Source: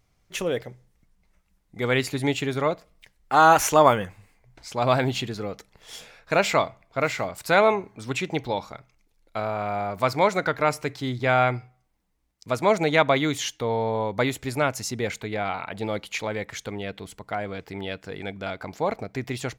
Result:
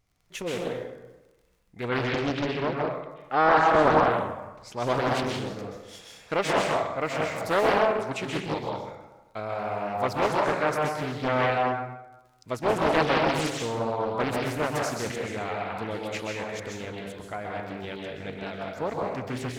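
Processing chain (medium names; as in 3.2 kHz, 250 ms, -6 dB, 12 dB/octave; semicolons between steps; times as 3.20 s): 1.89–3.95 s: low-pass 3.8 kHz 24 dB/octave; crackle 25 per s -44 dBFS; plate-style reverb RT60 1.1 s, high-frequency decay 0.6×, pre-delay 115 ms, DRR -1.5 dB; loudspeaker Doppler distortion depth 0.77 ms; trim -6 dB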